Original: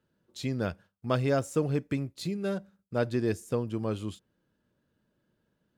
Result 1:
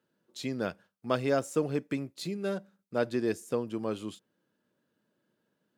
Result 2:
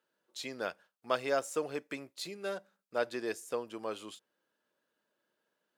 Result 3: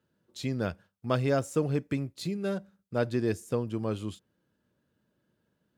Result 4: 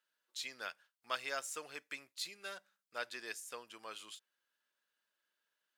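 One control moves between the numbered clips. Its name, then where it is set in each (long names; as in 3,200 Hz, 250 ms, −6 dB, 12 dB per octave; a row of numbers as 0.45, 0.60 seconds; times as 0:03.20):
high-pass filter, corner frequency: 200, 550, 53, 1,500 Hertz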